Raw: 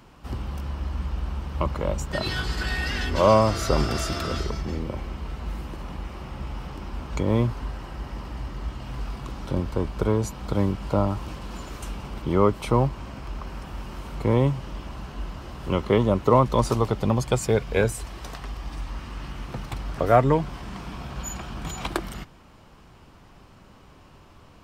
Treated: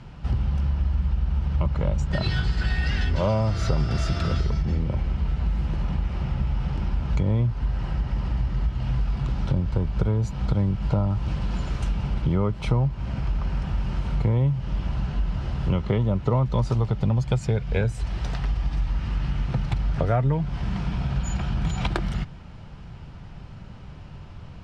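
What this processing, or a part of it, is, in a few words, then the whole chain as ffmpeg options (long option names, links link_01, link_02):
jukebox: -af "lowpass=5200,lowshelf=frequency=210:width_type=q:width=1.5:gain=8,bandreject=frequency=1100:width=8.7,acompressor=threshold=-24dB:ratio=4,volume=3.5dB"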